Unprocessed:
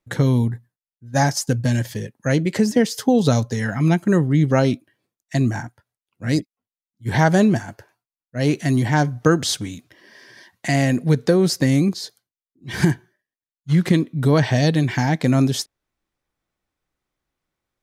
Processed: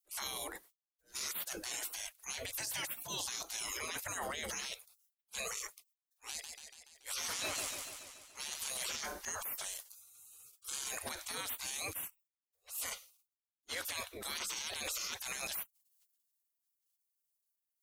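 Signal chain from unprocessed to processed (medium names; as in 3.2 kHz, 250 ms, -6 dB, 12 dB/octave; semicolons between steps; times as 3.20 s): spectral gate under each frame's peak -30 dB weak; treble shelf 5.3 kHz +10.5 dB; transient shaper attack -10 dB, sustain +7 dB; peak limiter -33 dBFS, peak gain reduction 19 dB; 6.29–8.84 s: modulated delay 143 ms, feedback 62%, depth 141 cents, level -5 dB; trim +3.5 dB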